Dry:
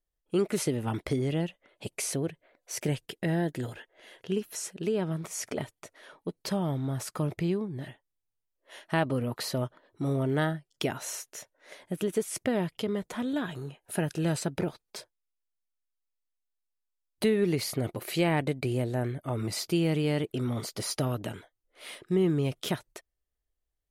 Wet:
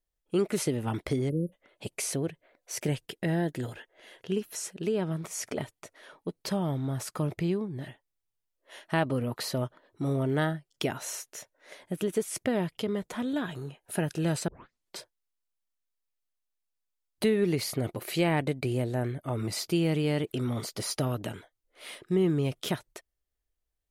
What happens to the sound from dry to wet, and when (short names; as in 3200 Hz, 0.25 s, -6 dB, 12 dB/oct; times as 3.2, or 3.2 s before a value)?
1.3–1.53 spectral delete 590–9300 Hz
14.48 tape start 0.51 s
20.27–21.31 mismatched tape noise reduction encoder only